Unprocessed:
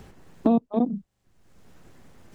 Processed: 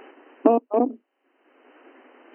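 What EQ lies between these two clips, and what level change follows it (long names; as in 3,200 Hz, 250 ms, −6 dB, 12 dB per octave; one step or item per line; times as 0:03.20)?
linear-phase brick-wall band-pass 250–3,100 Hz
+7.5 dB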